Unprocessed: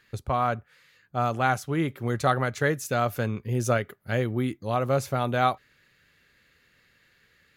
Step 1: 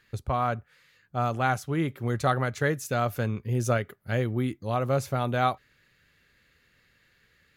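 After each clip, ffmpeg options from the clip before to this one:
-af "lowshelf=f=110:g=5.5,volume=-2dB"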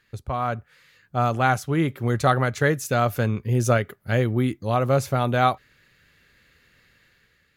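-af "dynaudnorm=f=130:g=9:m=6.5dB,volume=-1dB"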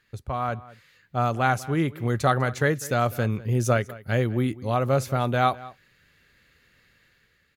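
-filter_complex "[0:a]asplit=2[a][b];[b]adelay=198.3,volume=-19dB,highshelf=f=4k:g=-4.46[c];[a][c]amix=inputs=2:normalize=0,volume=-2dB"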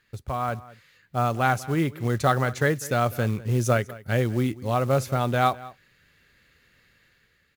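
-af "acrusher=bits=6:mode=log:mix=0:aa=0.000001"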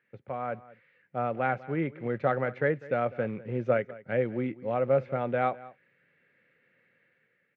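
-af "highpass=f=140:w=0.5412,highpass=f=140:w=1.3066,equalizer=f=520:t=q:w=4:g=8,equalizer=f=1.1k:t=q:w=4:g=-6,equalizer=f=2.2k:t=q:w=4:g=4,lowpass=f=2.4k:w=0.5412,lowpass=f=2.4k:w=1.3066,volume=-6dB"

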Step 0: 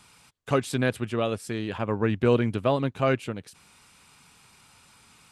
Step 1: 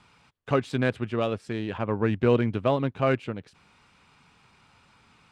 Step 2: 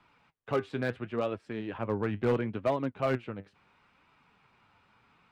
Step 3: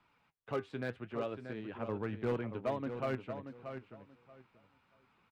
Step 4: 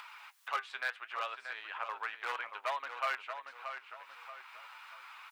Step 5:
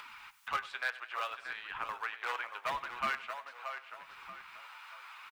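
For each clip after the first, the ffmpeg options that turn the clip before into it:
-af "adynamicsmooth=sensitivity=2:basefreq=3.9k"
-filter_complex "[0:a]bass=f=250:g=-4,treble=f=4k:g=-14,flanger=delay=3:depth=7.2:regen=66:speed=0.73:shape=sinusoidal,acrossover=split=120[a][b];[b]asoftclip=type=hard:threshold=-21.5dB[c];[a][c]amix=inputs=2:normalize=0"
-filter_complex "[0:a]asplit=2[a][b];[b]adelay=632,lowpass=f=4k:p=1,volume=-8.5dB,asplit=2[c][d];[d]adelay=632,lowpass=f=4k:p=1,volume=0.2,asplit=2[e][f];[f]adelay=632,lowpass=f=4k:p=1,volume=0.2[g];[a][c][e][g]amix=inputs=4:normalize=0,volume=-7dB"
-af "highpass=f=970:w=0.5412,highpass=f=970:w=1.3066,acompressor=mode=upward:threshold=-49dB:ratio=2.5,volume=10dB"
-filter_complex "[0:a]acrossover=split=570|3300[a][b][c];[a]acrusher=samples=29:mix=1:aa=0.000001:lfo=1:lforange=46.4:lforate=0.76[d];[d][b][c]amix=inputs=3:normalize=0,aecho=1:1:97|194|291|388:0.126|0.0592|0.0278|0.0131,volume=1dB"

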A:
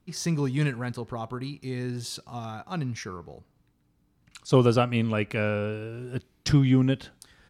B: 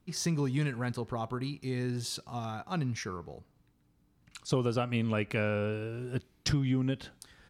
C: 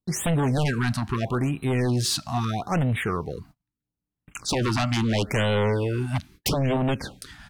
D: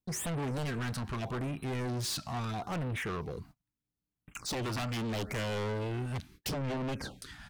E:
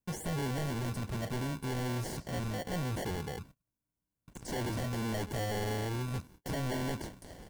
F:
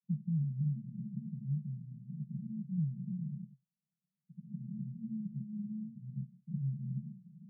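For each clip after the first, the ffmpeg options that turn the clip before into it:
-af "acompressor=threshold=-25dB:ratio=5,volume=-1dB"
-af "aeval=exprs='0.133*sin(PI/2*3.55*val(0)/0.133)':c=same,agate=range=-33dB:threshold=-44dB:ratio=16:detection=peak,afftfilt=real='re*(1-between(b*sr/1024,410*pow(5800/410,0.5+0.5*sin(2*PI*0.77*pts/sr))/1.41,410*pow(5800/410,0.5+0.5*sin(2*PI*0.77*pts/sr))*1.41))':imag='im*(1-between(b*sr/1024,410*pow(5800/410,0.5+0.5*sin(2*PI*0.77*pts/sr))/1.41,410*pow(5800/410,0.5+0.5*sin(2*PI*0.77*pts/sr))*1.41))':win_size=1024:overlap=0.75,volume=-1.5dB"
-af "asoftclip=type=tanh:threshold=-29dB,volume=-3.5dB"
-filter_complex "[0:a]acrossover=split=5300[a][b];[a]acrusher=samples=35:mix=1:aa=0.000001[c];[b]alimiter=level_in=15dB:limit=-24dB:level=0:latency=1,volume=-15dB[d];[c][d]amix=inputs=2:normalize=0"
-af "asuperpass=centerf=170:order=20:qfactor=1.9,volume=4.5dB"

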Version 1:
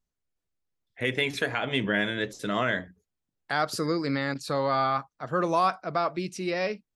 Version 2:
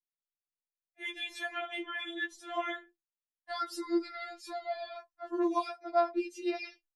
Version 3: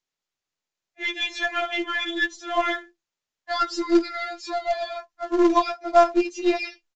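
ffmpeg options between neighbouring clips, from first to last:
-af "agate=range=-33dB:threshold=-43dB:ratio=3:detection=peak,flanger=delay=8.5:depth=6:regen=-28:speed=0.56:shape=sinusoidal,afftfilt=real='re*4*eq(mod(b,16),0)':imag='im*4*eq(mod(b,16),0)':win_size=2048:overlap=0.75,volume=-3dB"
-filter_complex "[0:a]asplit=2[a][b];[b]acrusher=bits=2:mode=log:mix=0:aa=0.000001,volume=-9.5dB[c];[a][c]amix=inputs=2:normalize=0,aeval=exprs='0.2*(cos(1*acos(clip(val(0)/0.2,-1,1)))-cos(1*PI/2))+0.00631*(cos(8*acos(clip(val(0)/0.2,-1,1)))-cos(8*PI/2))':c=same,aresample=16000,aresample=44100,volume=9dB"

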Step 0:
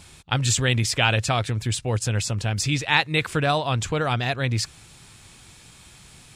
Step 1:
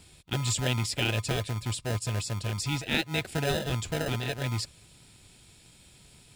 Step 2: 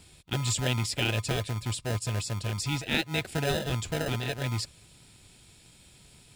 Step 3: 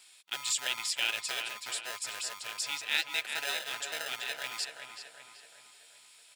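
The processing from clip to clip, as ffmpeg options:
-filter_complex "[0:a]bandreject=f=6.2k:w=7.7,acrossover=split=1800[a][b];[a]acrusher=samples=39:mix=1:aa=0.000001[c];[c][b]amix=inputs=2:normalize=0,volume=-6.5dB"
-af anull
-filter_complex "[0:a]highpass=1.2k,asplit=2[a][b];[b]adelay=379,lowpass=f=3.2k:p=1,volume=-6dB,asplit=2[c][d];[d]adelay=379,lowpass=f=3.2k:p=1,volume=0.52,asplit=2[e][f];[f]adelay=379,lowpass=f=3.2k:p=1,volume=0.52,asplit=2[g][h];[h]adelay=379,lowpass=f=3.2k:p=1,volume=0.52,asplit=2[i][j];[j]adelay=379,lowpass=f=3.2k:p=1,volume=0.52,asplit=2[k][l];[l]adelay=379,lowpass=f=3.2k:p=1,volume=0.52[m];[c][e][g][i][k][m]amix=inputs=6:normalize=0[n];[a][n]amix=inputs=2:normalize=0"

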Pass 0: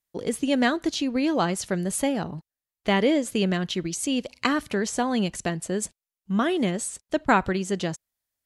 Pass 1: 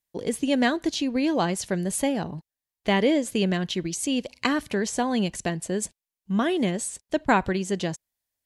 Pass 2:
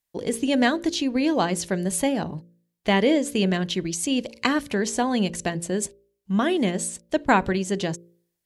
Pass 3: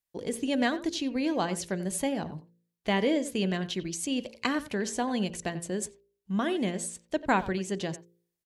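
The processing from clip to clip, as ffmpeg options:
-af "equalizer=f=1.3k:w=7.7:g=-8"
-af "bandreject=f=57.25:t=h:w=4,bandreject=f=114.5:t=h:w=4,bandreject=f=171.75:t=h:w=4,bandreject=f=229:t=h:w=4,bandreject=f=286.25:t=h:w=4,bandreject=f=343.5:t=h:w=4,bandreject=f=400.75:t=h:w=4,bandreject=f=458:t=h:w=4,bandreject=f=515.25:t=h:w=4,bandreject=f=572.5:t=h:w=4,volume=2dB"
-filter_complex "[0:a]asplit=2[a][b];[b]adelay=90,highpass=300,lowpass=3.4k,asoftclip=type=hard:threshold=-11.5dB,volume=-15dB[c];[a][c]amix=inputs=2:normalize=0,volume=-6.5dB"

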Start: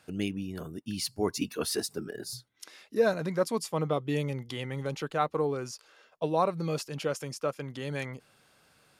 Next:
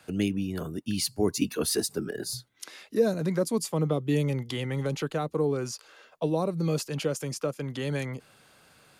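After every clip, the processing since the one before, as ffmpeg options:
-filter_complex "[0:a]bandreject=f=5.4k:w=19,acrossover=split=190|450|4800[a][b][c][d];[c]acompressor=threshold=-40dB:ratio=6[e];[a][b][e][d]amix=inputs=4:normalize=0,volume=5.5dB"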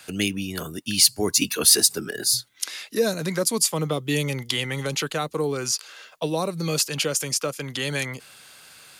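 -af "tiltshelf=f=1.3k:g=-7.5,volume=7dB"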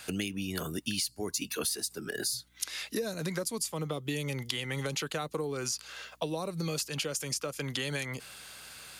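-af "acompressor=threshold=-30dB:ratio=12,aeval=exprs='val(0)+0.000447*(sin(2*PI*60*n/s)+sin(2*PI*2*60*n/s)/2+sin(2*PI*3*60*n/s)/3+sin(2*PI*4*60*n/s)/4+sin(2*PI*5*60*n/s)/5)':c=same"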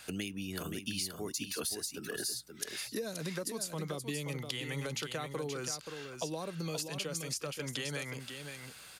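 -af "aecho=1:1:527:0.447,volume=-4.5dB"

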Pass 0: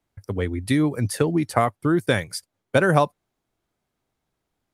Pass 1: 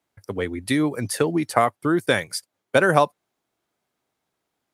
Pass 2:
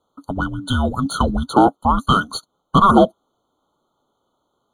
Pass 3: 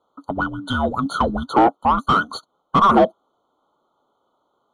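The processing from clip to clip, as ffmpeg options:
-af "highpass=f=310:p=1,volume=2.5dB"
-filter_complex "[0:a]afreqshift=-380,asplit=2[a][b];[b]highpass=f=720:p=1,volume=20dB,asoftclip=type=tanh:threshold=-3.5dB[c];[a][c]amix=inputs=2:normalize=0,lowpass=f=1.3k:p=1,volume=-6dB,afftfilt=real='re*eq(mod(floor(b*sr/1024/1500),2),0)':imag='im*eq(mod(floor(b*sr/1024/1500),2),0)':win_size=1024:overlap=0.75,volume=3dB"
-filter_complex "[0:a]asplit=2[a][b];[b]highpass=f=720:p=1,volume=15dB,asoftclip=type=tanh:threshold=-1dB[c];[a][c]amix=inputs=2:normalize=0,lowpass=f=1.2k:p=1,volume=-6dB,volume=-3dB"

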